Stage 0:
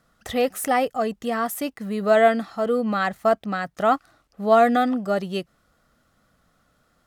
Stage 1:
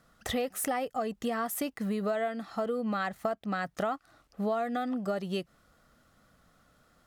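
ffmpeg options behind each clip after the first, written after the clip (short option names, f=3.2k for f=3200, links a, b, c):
-af "acompressor=threshold=-28dB:ratio=12"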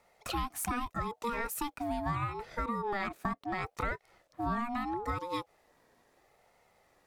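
-af "aeval=exprs='val(0)*sin(2*PI*590*n/s+590*0.2/0.76*sin(2*PI*0.76*n/s))':c=same"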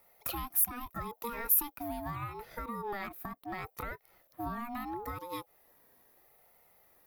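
-af "alimiter=level_in=1.5dB:limit=-24dB:level=0:latency=1:release=350,volume=-1.5dB,aexciter=amount=13.4:drive=4.4:freq=11k,volume=-2.5dB"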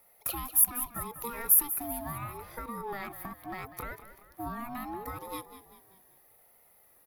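-filter_complex "[0:a]equalizer=f=11k:t=o:w=0.38:g=9,asplit=6[a][b][c][d][e][f];[b]adelay=194,afreqshift=-40,volume=-12.5dB[g];[c]adelay=388,afreqshift=-80,volume=-19.2dB[h];[d]adelay=582,afreqshift=-120,volume=-26dB[i];[e]adelay=776,afreqshift=-160,volume=-32.7dB[j];[f]adelay=970,afreqshift=-200,volume=-39.5dB[k];[a][g][h][i][j][k]amix=inputs=6:normalize=0"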